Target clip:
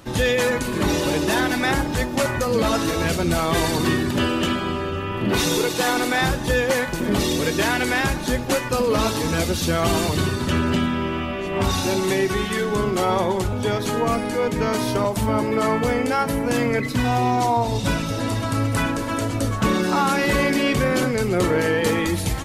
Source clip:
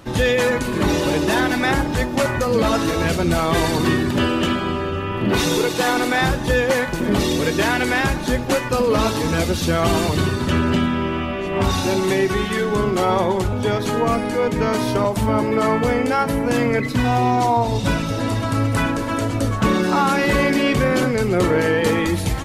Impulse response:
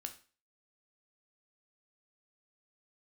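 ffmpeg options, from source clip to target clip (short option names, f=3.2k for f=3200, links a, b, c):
-af "highshelf=f=4.5k:g=5,volume=-2.5dB"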